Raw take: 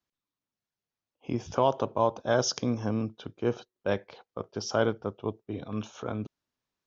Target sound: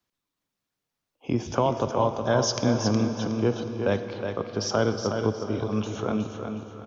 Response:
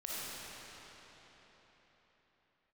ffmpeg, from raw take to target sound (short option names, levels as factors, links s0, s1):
-filter_complex "[0:a]acrossover=split=240[s0][s1];[s1]acompressor=threshold=0.0316:ratio=2[s2];[s0][s2]amix=inputs=2:normalize=0,aecho=1:1:366|732|1098|1464:0.473|0.147|0.0455|0.0141,asplit=2[s3][s4];[1:a]atrim=start_sample=2205[s5];[s4][s5]afir=irnorm=-1:irlink=0,volume=0.299[s6];[s3][s6]amix=inputs=2:normalize=0,volume=1.68"